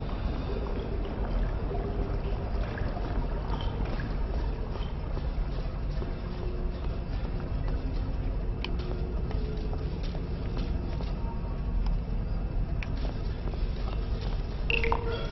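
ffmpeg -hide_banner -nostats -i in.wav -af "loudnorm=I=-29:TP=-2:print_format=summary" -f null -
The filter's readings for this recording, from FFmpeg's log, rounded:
Input Integrated:    -33.5 LUFS
Input True Peak:     -11.5 dBTP
Input LRA:             2.2 LU
Input Threshold:     -43.5 LUFS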